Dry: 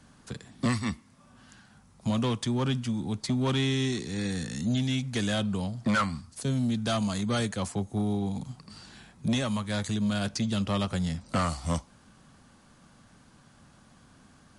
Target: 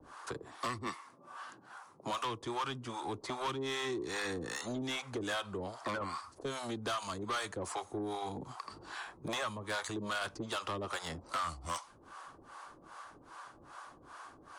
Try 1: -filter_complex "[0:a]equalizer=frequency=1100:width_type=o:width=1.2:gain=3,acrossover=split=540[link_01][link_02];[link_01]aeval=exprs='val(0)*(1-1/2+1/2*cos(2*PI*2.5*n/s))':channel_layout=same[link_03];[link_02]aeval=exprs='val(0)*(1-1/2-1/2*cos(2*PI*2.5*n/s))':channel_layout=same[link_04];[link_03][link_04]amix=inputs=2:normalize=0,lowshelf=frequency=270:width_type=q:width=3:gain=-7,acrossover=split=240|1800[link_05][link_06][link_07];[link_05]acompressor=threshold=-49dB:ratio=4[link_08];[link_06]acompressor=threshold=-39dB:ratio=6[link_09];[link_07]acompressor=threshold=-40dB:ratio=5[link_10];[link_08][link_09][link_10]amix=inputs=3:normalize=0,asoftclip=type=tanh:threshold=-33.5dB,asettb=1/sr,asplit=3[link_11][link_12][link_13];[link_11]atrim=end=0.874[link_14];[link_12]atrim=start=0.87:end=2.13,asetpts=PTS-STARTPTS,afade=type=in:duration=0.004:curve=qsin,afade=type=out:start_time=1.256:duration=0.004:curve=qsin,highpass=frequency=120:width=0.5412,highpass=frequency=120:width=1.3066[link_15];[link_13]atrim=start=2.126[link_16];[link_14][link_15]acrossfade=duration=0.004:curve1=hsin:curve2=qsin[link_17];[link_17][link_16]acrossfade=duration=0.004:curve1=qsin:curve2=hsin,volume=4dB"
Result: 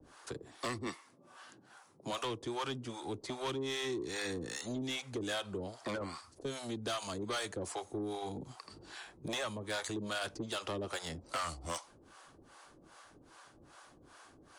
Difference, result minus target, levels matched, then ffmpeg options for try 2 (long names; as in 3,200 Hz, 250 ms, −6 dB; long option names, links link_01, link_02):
1,000 Hz band −3.5 dB
-filter_complex "[0:a]equalizer=frequency=1100:width_type=o:width=1.2:gain=14.5,acrossover=split=540[link_01][link_02];[link_01]aeval=exprs='val(0)*(1-1/2+1/2*cos(2*PI*2.5*n/s))':channel_layout=same[link_03];[link_02]aeval=exprs='val(0)*(1-1/2-1/2*cos(2*PI*2.5*n/s))':channel_layout=same[link_04];[link_03][link_04]amix=inputs=2:normalize=0,lowshelf=frequency=270:width_type=q:width=3:gain=-7,acrossover=split=240|1800[link_05][link_06][link_07];[link_05]acompressor=threshold=-49dB:ratio=4[link_08];[link_06]acompressor=threshold=-39dB:ratio=6[link_09];[link_07]acompressor=threshold=-40dB:ratio=5[link_10];[link_08][link_09][link_10]amix=inputs=3:normalize=0,asoftclip=type=tanh:threshold=-33.5dB,asettb=1/sr,asplit=3[link_11][link_12][link_13];[link_11]atrim=end=0.874[link_14];[link_12]atrim=start=0.87:end=2.13,asetpts=PTS-STARTPTS,afade=type=in:duration=0.004:curve=qsin,afade=type=out:start_time=1.256:duration=0.004:curve=qsin,highpass=frequency=120:width=0.5412,highpass=frequency=120:width=1.3066[link_15];[link_13]atrim=start=2.126[link_16];[link_14][link_15]acrossfade=duration=0.004:curve1=hsin:curve2=qsin[link_17];[link_17][link_16]acrossfade=duration=0.004:curve1=qsin:curve2=hsin,volume=4dB"